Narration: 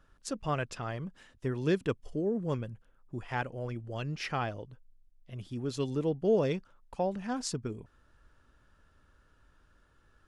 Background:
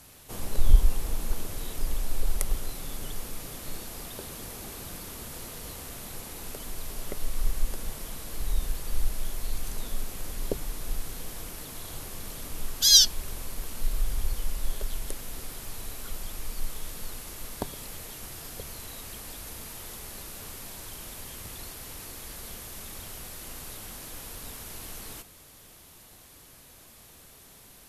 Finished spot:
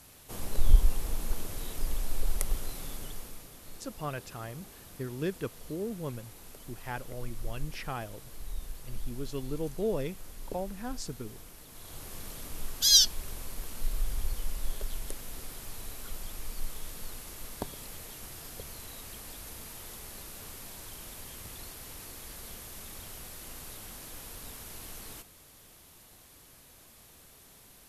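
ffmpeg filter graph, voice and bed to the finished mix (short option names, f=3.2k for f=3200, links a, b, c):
-filter_complex "[0:a]adelay=3550,volume=-4.5dB[a];[1:a]volume=4.5dB,afade=t=out:st=2.83:d=0.66:silence=0.398107,afade=t=in:st=11.68:d=0.47:silence=0.446684[b];[a][b]amix=inputs=2:normalize=0"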